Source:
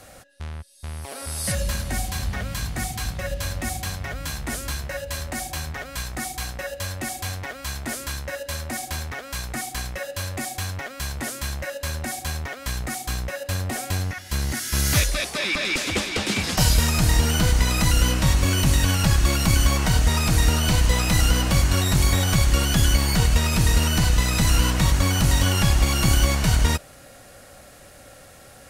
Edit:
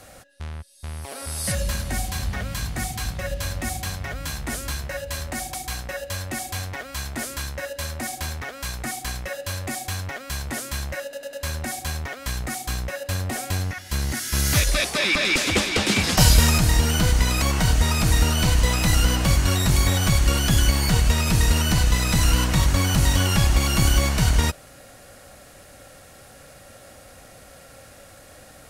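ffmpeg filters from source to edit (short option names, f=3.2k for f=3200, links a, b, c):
-filter_complex "[0:a]asplit=8[a][b][c][d][e][f][g][h];[a]atrim=end=5.542[i];[b]atrim=start=6.238:end=11.832[j];[c]atrim=start=11.728:end=11.832[k];[d]atrim=start=11.728:end=11.832[l];[e]atrim=start=11.728:end=15.072[m];[f]atrim=start=15.068:end=16.982,asetpts=PTS-STARTPTS,volume=3.5dB[n];[g]atrim=start=16.978:end=17.822[o];[h]atrim=start=19.678[p];[i][j]acrossfade=d=0.004:c1=hsin:c2=hsin[q];[q][k]acrossfade=d=0.004:c1=hsin:c2=hsin[r];[r][l]acrossfade=d=0.004:c1=hsin:c2=hsin[s];[s][m]acrossfade=d=0.004:c1=hsin:c2=hsin[t];[t][n]acrossfade=d=0.004:c1=hsin:c2=hsin[u];[u][o]acrossfade=d=0.004:c1=hsin:c2=hsin[v];[v][p]acrossfade=d=0.004:c1=hsin:c2=hsin"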